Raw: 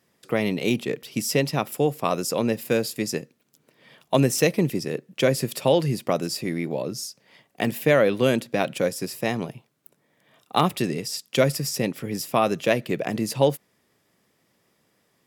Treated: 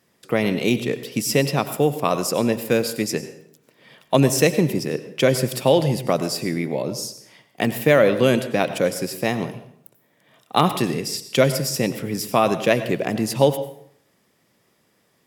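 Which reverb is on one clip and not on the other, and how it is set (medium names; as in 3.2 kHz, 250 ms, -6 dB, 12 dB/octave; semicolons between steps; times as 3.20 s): plate-style reverb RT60 0.67 s, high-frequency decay 0.75×, pre-delay 80 ms, DRR 11.5 dB; trim +3 dB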